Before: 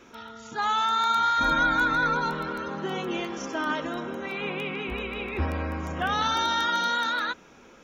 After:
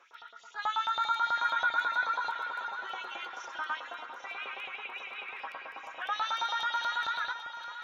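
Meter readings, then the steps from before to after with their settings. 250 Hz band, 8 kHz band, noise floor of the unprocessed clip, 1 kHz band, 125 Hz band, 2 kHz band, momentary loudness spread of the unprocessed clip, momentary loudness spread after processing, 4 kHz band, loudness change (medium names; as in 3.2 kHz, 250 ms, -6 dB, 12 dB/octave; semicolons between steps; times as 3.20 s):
-29.0 dB, no reading, -52 dBFS, -6.0 dB, under -35 dB, -5.0 dB, 10 LU, 13 LU, -7.0 dB, -6.5 dB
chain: LFO high-pass saw up 9.2 Hz 690–4000 Hz; treble shelf 5.3 kHz -7.5 dB; echo whose repeats swap between lows and highs 397 ms, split 1 kHz, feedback 67%, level -7 dB; trim -8.5 dB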